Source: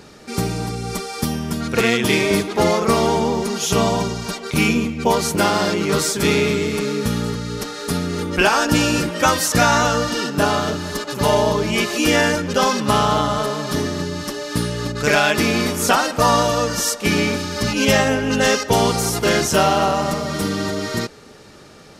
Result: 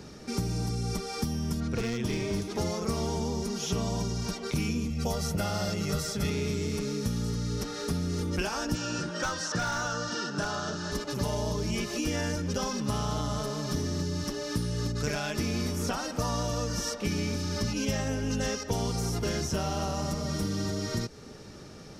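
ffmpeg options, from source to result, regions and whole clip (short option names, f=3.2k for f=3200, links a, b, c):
-filter_complex "[0:a]asettb=1/sr,asplit=3[a][b][c];[a]atrim=end=1.604[d];[b]atrim=start=1.6:end=2.42,asetpts=PTS-STARTPTS,afade=t=in:d=0.004:c=qsin,afade=t=out:st=0.816:d=0.004:c=qsin,lowpass=f=2.6k:p=1,asoftclip=type=hard:threshold=-12.5dB[e];[c]atrim=start=2.416[f];[d][e]acrossfade=d=0.004:c1=hsin:c2=qsin[g];[g][f]acrossfade=d=0.004:c1=qsin:c2=hsin,asettb=1/sr,asplit=3[h][i][j];[h]atrim=end=4.904[k];[i]atrim=start=4.9:end=6.3,asetpts=PTS-STARTPTS,afade=t=in:d=0.004:c=qsin,afade=t=out:st=1.396:d=0.004:c=qsin,highshelf=f=8.8k:g=8.5,aecho=1:1:1.5:0.58,atrim=end_sample=61740[l];[j]atrim=start=6.296[m];[k][l]acrossfade=d=0.004:c1=hsin:c2=qsin[n];[n][m]acrossfade=d=0.004:c1=qsin:c2=hsin,asettb=1/sr,asplit=3[o][p][q];[o]atrim=end=8.754[r];[p]atrim=start=8.75:end=10.92,asetpts=PTS-STARTPTS,afade=t=in:d=0.004:c=qsin,afade=t=out:st=2.166:d=0.004:c=qsin,highpass=180,equalizer=f=260:t=q:w=4:g=-10,equalizer=f=460:t=q:w=4:g=-4,equalizer=f=1.5k:t=q:w=4:g=9,equalizer=f=2.2k:t=q:w=4:g=-8,lowpass=f=7.7k:w=0.5412,lowpass=f=7.7k:w=1.3066,asoftclip=type=hard:threshold=-10dB[s];[q]atrim=start=10.916[t];[r][s]acrossfade=d=0.004:c1=hsin:c2=qsin[u];[u][t]acrossfade=d=0.004:c1=qsin:c2=hsin,lowshelf=f=360:g=9.5,acrossover=split=100|4400[v][w][x];[v]acompressor=threshold=-26dB:ratio=4[y];[w]acompressor=threshold=-24dB:ratio=4[z];[x]acompressor=threshold=-37dB:ratio=4[aa];[y][z][aa]amix=inputs=3:normalize=0,equalizer=f=5.6k:w=4.1:g=8,volume=-7.5dB"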